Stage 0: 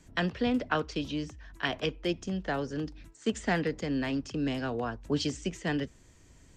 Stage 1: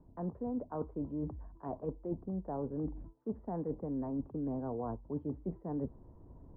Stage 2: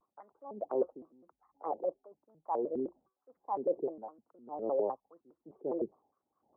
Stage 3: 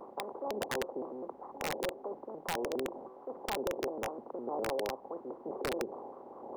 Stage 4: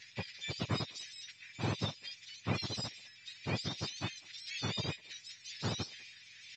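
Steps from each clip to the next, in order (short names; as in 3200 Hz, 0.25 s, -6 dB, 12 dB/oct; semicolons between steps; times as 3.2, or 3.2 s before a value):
reverse; compressor 10:1, threshold -38 dBFS, peak gain reduction 16 dB; reverse; Chebyshev low-pass 990 Hz, order 4; gain +4.5 dB
formant sharpening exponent 1.5; LFO high-pass sine 1 Hz 440–1600 Hz; shaped vibrato square 4.9 Hz, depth 250 cents; gain +2 dB
per-bin compression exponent 0.4; compressor 5:1, threshold -30 dBFS, peak gain reduction 8.5 dB; wrapped overs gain 24.5 dB; gain -1.5 dB
spectrum mirrored in octaves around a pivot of 1400 Hz; speakerphone echo 0.2 s, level -25 dB; µ-law 128 kbps 16000 Hz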